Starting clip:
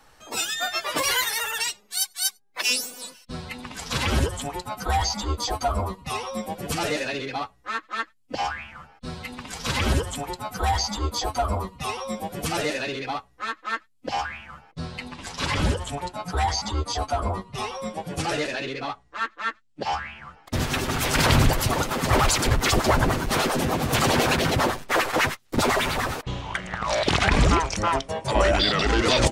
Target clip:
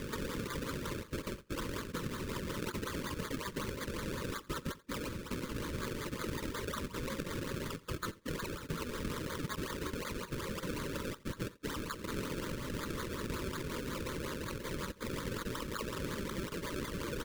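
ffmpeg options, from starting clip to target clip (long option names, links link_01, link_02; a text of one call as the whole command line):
ffmpeg -i in.wav -af "highpass=150,tiltshelf=frequency=1400:gain=-9,acompressor=mode=upward:threshold=-37dB:ratio=2.5,alimiter=level_in=1.5dB:limit=-24dB:level=0:latency=1:release=86,volume=-1.5dB,acompressor=threshold=-40dB:ratio=16,flanger=delay=16:depth=2.7:speed=2.2,acrusher=samples=31:mix=1:aa=0.000001:lfo=1:lforange=31:lforate=3.2,atempo=1.7,asuperstop=centerf=740:order=4:qfactor=1.7,aecho=1:1:86:0.0891,volume=10dB" out.wav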